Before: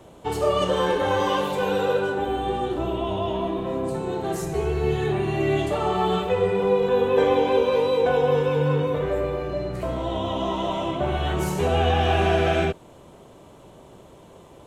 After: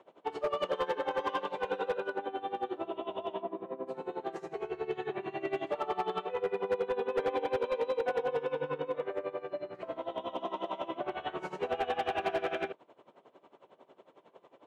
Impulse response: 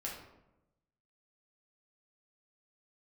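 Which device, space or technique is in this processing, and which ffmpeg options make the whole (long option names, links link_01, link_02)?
helicopter radio: -filter_complex "[0:a]asplit=3[link_01][link_02][link_03];[link_01]afade=type=out:start_time=3.41:duration=0.02[link_04];[link_02]lowpass=frequency=1100:poles=1,afade=type=in:start_time=3.41:duration=0.02,afade=type=out:start_time=3.86:duration=0.02[link_05];[link_03]afade=type=in:start_time=3.86:duration=0.02[link_06];[link_04][link_05][link_06]amix=inputs=3:normalize=0,highpass=370,lowpass=2800,aeval=exprs='val(0)*pow(10,-18*(0.5-0.5*cos(2*PI*11*n/s))/20)':channel_layout=same,asoftclip=type=hard:threshold=-20.5dB,volume=-4dB"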